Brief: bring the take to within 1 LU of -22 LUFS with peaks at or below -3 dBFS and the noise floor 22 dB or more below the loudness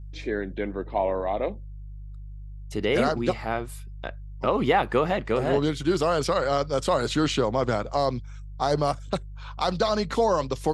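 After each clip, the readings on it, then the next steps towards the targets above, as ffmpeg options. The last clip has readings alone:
hum 50 Hz; highest harmonic 150 Hz; hum level -36 dBFS; loudness -25.5 LUFS; peak level -8.0 dBFS; loudness target -22.0 LUFS
-> -af "bandreject=f=50:t=h:w=4,bandreject=f=100:t=h:w=4,bandreject=f=150:t=h:w=4"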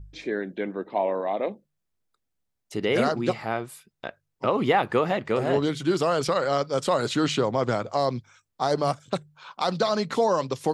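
hum not found; loudness -26.0 LUFS; peak level -7.5 dBFS; loudness target -22.0 LUFS
-> -af "volume=1.58"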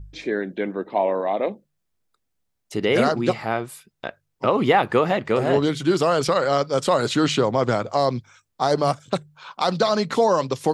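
loudness -22.0 LUFS; peak level -3.5 dBFS; noise floor -76 dBFS

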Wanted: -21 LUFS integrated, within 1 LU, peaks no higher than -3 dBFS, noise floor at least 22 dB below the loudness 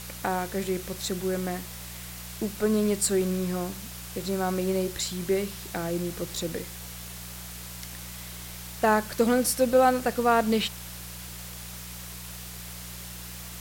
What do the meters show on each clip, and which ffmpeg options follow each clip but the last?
hum 60 Hz; highest harmonic 180 Hz; hum level -41 dBFS; noise floor -40 dBFS; noise floor target -51 dBFS; loudness -29.0 LUFS; peak level -9.0 dBFS; loudness target -21.0 LUFS
-> -af "bandreject=f=60:t=h:w=4,bandreject=f=120:t=h:w=4,bandreject=f=180:t=h:w=4"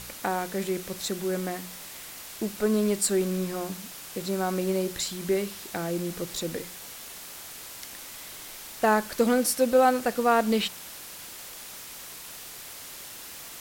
hum not found; noise floor -43 dBFS; noise floor target -50 dBFS
-> -af "afftdn=nr=7:nf=-43"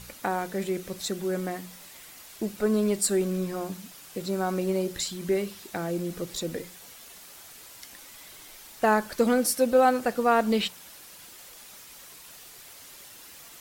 noise floor -48 dBFS; noise floor target -49 dBFS
-> -af "afftdn=nr=6:nf=-48"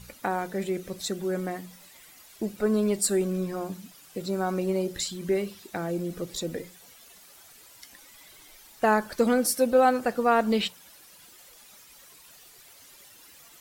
noise floor -53 dBFS; loudness -27.0 LUFS; peak level -9.5 dBFS; loudness target -21.0 LUFS
-> -af "volume=2"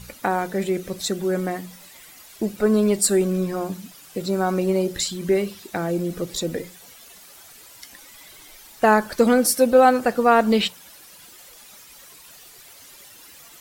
loudness -21.0 LUFS; peak level -3.5 dBFS; noise floor -47 dBFS

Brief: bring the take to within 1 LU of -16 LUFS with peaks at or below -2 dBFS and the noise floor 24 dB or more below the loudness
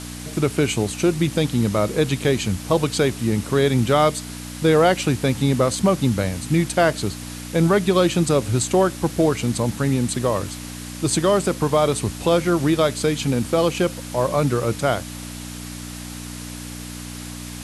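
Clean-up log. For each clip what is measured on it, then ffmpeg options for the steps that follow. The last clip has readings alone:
hum 60 Hz; highest harmonic 300 Hz; hum level -32 dBFS; noise floor -34 dBFS; noise floor target -45 dBFS; loudness -20.5 LUFS; peak level -5.0 dBFS; loudness target -16.0 LUFS
-> -af "bandreject=f=60:t=h:w=4,bandreject=f=120:t=h:w=4,bandreject=f=180:t=h:w=4,bandreject=f=240:t=h:w=4,bandreject=f=300:t=h:w=4"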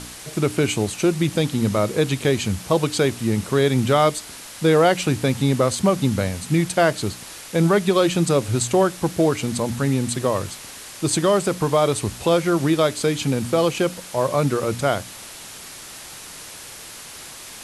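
hum not found; noise floor -39 dBFS; noise floor target -45 dBFS
-> -af "afftdn=nr=6:nf=-39"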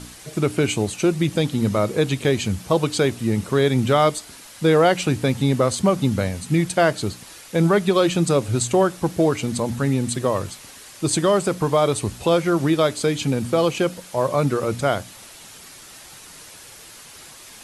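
noise floor -43 dBFS; noise floor target -45 dBFS
-> -af "afftdn=nr=6:nf=-43"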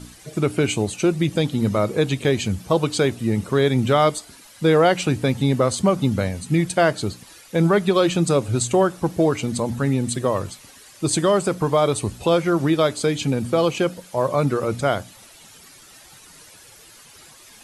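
noise floor -47 dBFS; loudness -21.0 LUFS; peak level -5.5 dBFS; loudness target -16.0 LUFS
-> -af "volume=1.78,alimiter=limit=0.794:level=0:latency=1"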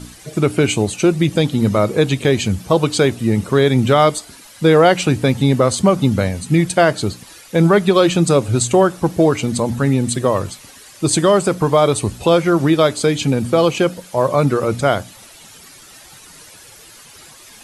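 loudness -16.0 LUFS; peak level -2.0 dBFS; noise floor -42 dBFS

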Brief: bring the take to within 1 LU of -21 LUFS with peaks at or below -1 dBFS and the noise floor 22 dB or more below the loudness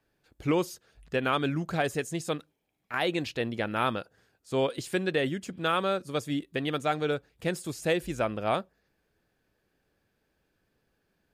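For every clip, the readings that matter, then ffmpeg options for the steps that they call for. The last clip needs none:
loudness -30.5 LUFS; peak level -14.5 dBFS; loudness target -21.0 LUFS
-> -af "volume=2.99"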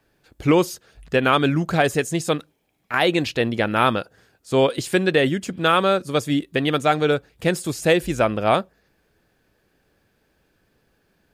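loudness -21.0 LUFS; peak level -5.0 dBFS; noise floor -67 dBFS

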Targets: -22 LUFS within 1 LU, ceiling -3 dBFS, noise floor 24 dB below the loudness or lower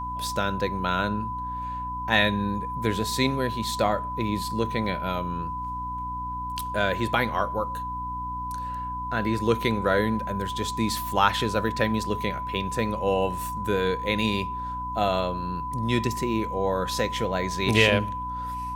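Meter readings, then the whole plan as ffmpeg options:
hum 60 Hz; highest harmonic 300 Hz; hum level -35 dBFS; steady tone 1 kHz; tone level -30 dBFS; loudness -26.5 LUFS; peak level -4.5 dBFS; loudness target -22.0 LUFS
-> -af "bandreject=f=60:t=h:w=6,bandreject=f=120:t=h:w=6,bandreject=f=180:t=h:w=6,bandreject=f=240:t=h:w=6,bandreject=f=300:t=h:w=6"
-af "bandreject=f=1000:w=30"
-af "volume=1.68,alimiter=limit=0.708:level=0:latency=1"

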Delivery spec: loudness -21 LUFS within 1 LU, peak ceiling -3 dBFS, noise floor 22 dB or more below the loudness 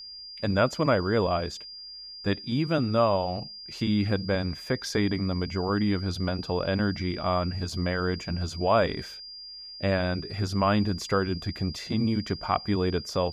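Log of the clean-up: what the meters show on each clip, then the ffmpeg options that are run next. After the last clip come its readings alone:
steady tone 4.8 kHz; tone level -40 dBFS; loudness -27.5 LUFS; peak level -8.0 dBFS; loudness target -21.0 LUFS
-> -af "bandreject=f=4800:w=30"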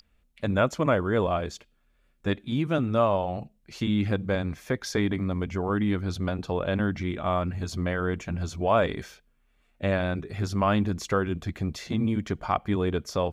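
steady tone not found; loudness -27.5 LUFS; peak level -8.5 dBFS; loudness target -21.0 LUFS
-> -af "volume=2.11,alimiter=limit=0.708:level=0:latency=1"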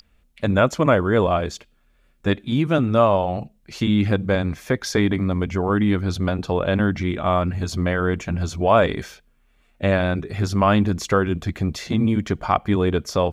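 loudness -21.0 LUFS; peak level -3.0 dBFS; noise floor -61 dBFS

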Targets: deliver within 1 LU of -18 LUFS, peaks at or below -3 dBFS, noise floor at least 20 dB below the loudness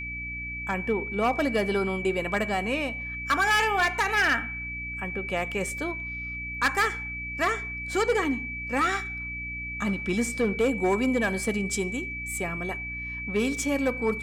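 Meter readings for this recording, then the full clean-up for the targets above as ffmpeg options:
hum 60 Hz; highest harmonic 300 Hz; hum level -38 dBFS; steady tone 2.3 kHz; tone level -33 dBFS; loudness -27.0 LUFS; peak level -15.5 dBFS; loudness target -18.0 LUFS
-> -af "bandreject=f=60:t=h:w=6,bandreject=f=120:t=h:w=6,bandreject=f=180:t=h:w=6,bandreject=f=240:t=h:w=6,bandreject=f=300:t=h:w=6"
-af "bandreject=f=2300:w=30"
-af "volume=2.82"

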